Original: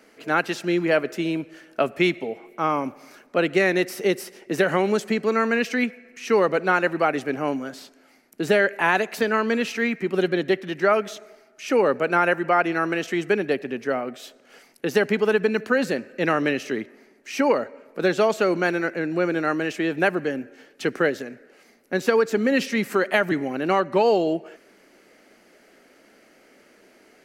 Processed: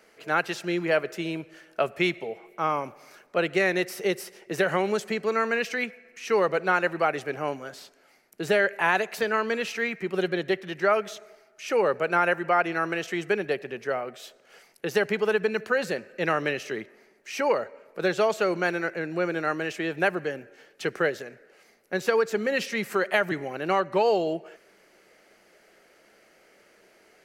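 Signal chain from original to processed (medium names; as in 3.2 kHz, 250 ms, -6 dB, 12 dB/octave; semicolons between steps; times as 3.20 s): peaking EQ 260 Hz -12 dB 0.48 oct; trim -2.5 dB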